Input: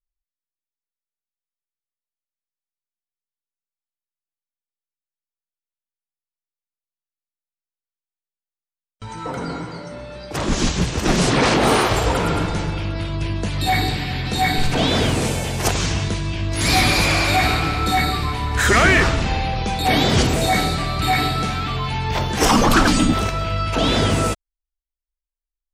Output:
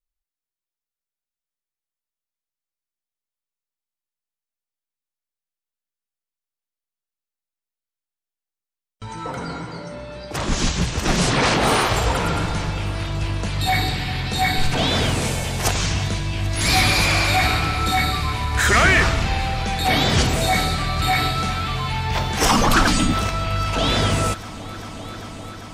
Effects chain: multi-head delay 395 ms, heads all three, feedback 73%, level -24 dB; dynamic bell 330 Hz, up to -5 dB, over -32 dBFS, Q 0.83

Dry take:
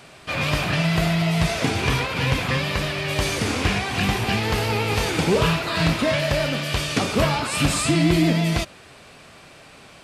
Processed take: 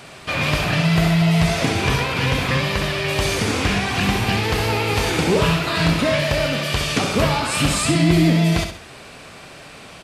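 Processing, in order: in parallel at +0.5 dB: compression, threshold -29 dBFS, peak gain reduction 14 dB; on the sum: feedback delay 66 ms, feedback 36%, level -7 dB; trim -1 dB

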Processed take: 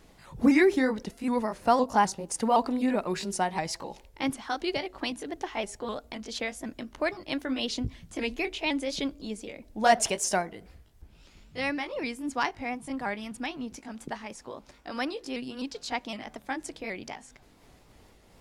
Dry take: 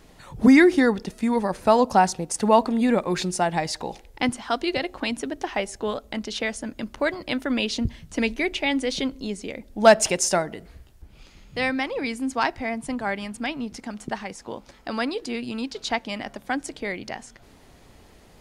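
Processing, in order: sawtooth pitch modulation +2 st, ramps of 256 ms; trim -4.5 dB

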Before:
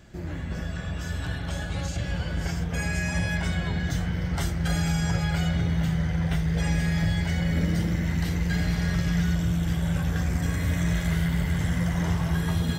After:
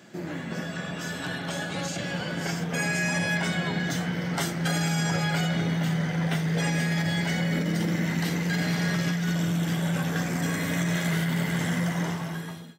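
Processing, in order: fade out at the end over 1.07 s; high-pass 170 Hz 24 dB/octave; compressor with a negative ratio -29 dBFS, ratio -1; trim +4 dB

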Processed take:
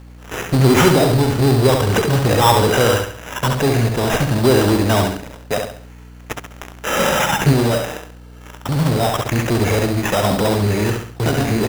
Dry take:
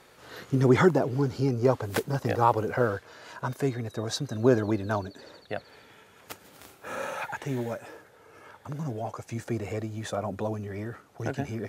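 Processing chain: in parallel at -6 dB: fuzz box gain 39 dB, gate -43 dBFS; 8.77–9.86 s: on the sum: treble shelf 4.5 kHz +7.5 dB; on a send: feedback delay 68 ms, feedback 39%, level -4.5 dB; on the sum: hum 60 Hz, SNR 22 dB; 6.99–7.53 s: peaking EQ 180 Hz +13 dB 0.85 oct; sample-and-hold 10×; trim +2 dB

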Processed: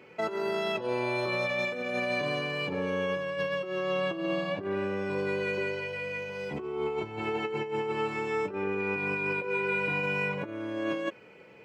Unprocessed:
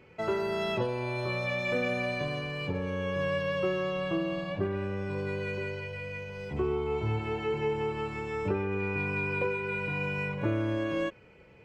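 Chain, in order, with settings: compressor with a negative ratio -32 dBFS, ratio -0.5; high-pass 210 Hz 12 dB/octave; trim +3 dB

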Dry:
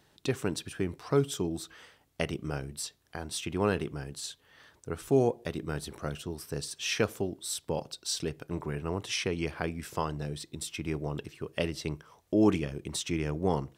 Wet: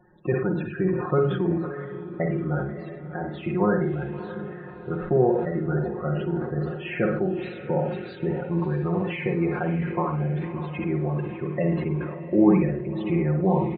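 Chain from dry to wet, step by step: low-pass 2.1 kHz 24 dB/octave; comb 5.6 ms, depth 87%; in parallel at -0.5 dB: compression, threshold -34 dBFS, peak gain reduction 17 dB; on the sum: loudest bins only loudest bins 32; echo that smears into a reverb 618 ms, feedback 54%, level -12 dB; on a send at -4 dB: reverberation, pre-delay 47 ms; on the sum: decay stretcher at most 52 dB/s

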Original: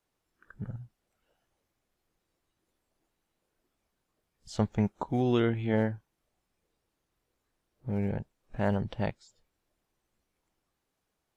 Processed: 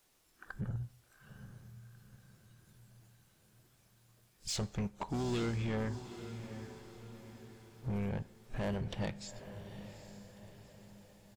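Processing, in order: treble shelf 2.8 kHz +9.5 dB; compression 2:1, threshold -40 dBFS, peak gain reduction 11 dB; harmony voices -12 st -15 dB, -7 st -16 dB; saturation -36 dBFS, distortion -8 dB; echo that smears into a reverb 831 ms, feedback 48%, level -11 dB; plate-style reverb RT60 0.77 s, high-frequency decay 0.9×, DRR 18 dB; trim +5.5 dB

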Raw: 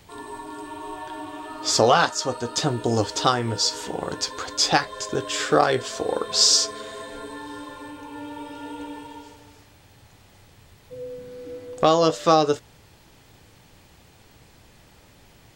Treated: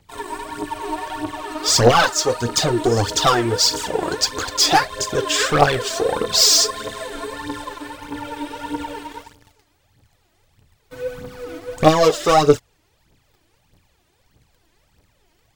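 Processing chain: waveshaping leveller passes 3; phaser 1.6 Hz, delay 3.3 ms, feedback 66%; trim -6 dB

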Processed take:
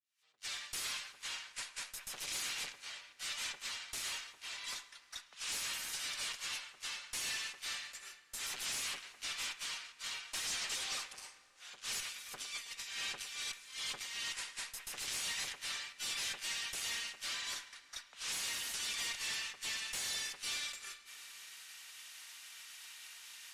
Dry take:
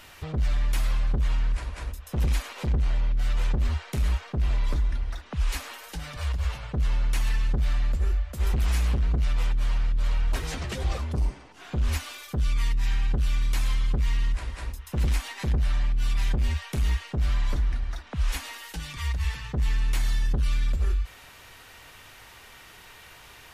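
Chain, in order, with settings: fade-in on the opening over 0.51 s; high-pass 1.3 kHz 6 dB/octave; differentiator; 12.00–14.34 s: compressor with a negative ratio -53 dBFS, ratio -1; bucket-brigade echo 107 ms, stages 2048, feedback 84%, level -12 dB; expander -47 dBFS; valve stage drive 50 dB, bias 0.25; low-pass 8.2 kHz 12 dB/octave; plate-style reverb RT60 4 s, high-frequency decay 0.55×, DRR 16.5 dB; trim +15.5 dB

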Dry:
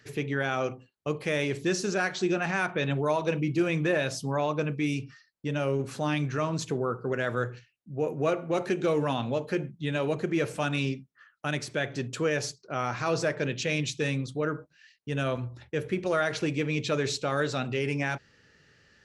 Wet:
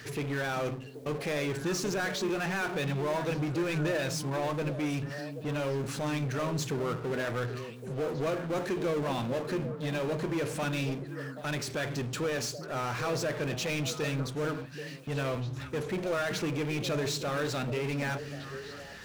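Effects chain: power-law waveshaper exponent 0.5; repeats whose band climbs or falls 390 ms, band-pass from 190 Hz, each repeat 1.4 oct, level -5.5 dB; trim -9 dB

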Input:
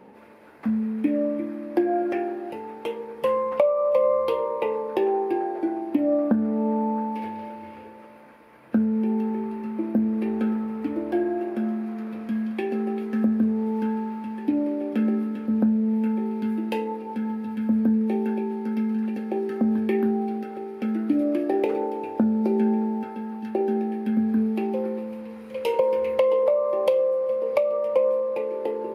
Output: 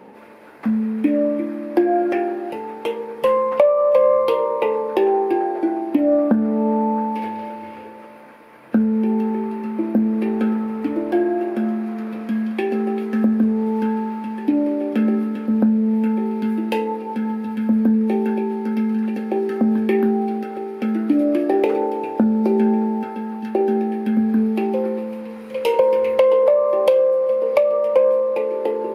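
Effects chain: bass shelf 100 Hz -10.5 dB; in parallel at -9 dB: saturation -16 dBFS, distortion -19 dB; on the sum: trim +4 dB

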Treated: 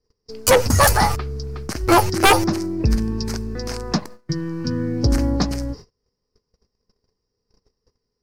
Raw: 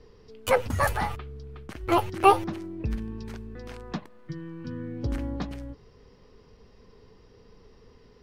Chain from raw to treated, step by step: resonant high shelf 4.1 kHz +7 dB, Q 3; gate -47 dBFS, range -36 dB; sine folder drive 11 dB, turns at -5 dBFS; trim -2.5 dB

